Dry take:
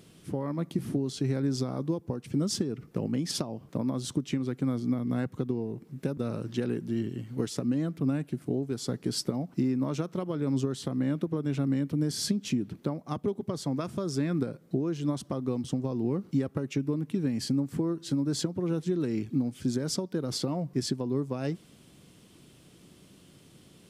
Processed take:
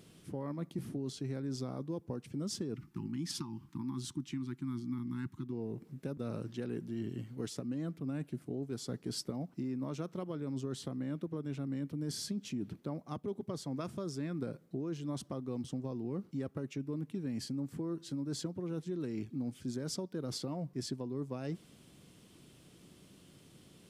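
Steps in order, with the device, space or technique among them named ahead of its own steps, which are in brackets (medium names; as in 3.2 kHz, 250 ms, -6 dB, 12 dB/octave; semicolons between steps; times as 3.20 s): compression on the reversed sound (reverse; compression, threshold -31 dBFS, peak gain reduction 9.5 dB; reverse); spectral selection erased 2.76–5.52 s, 380–800 Hz; trim -3.5 dB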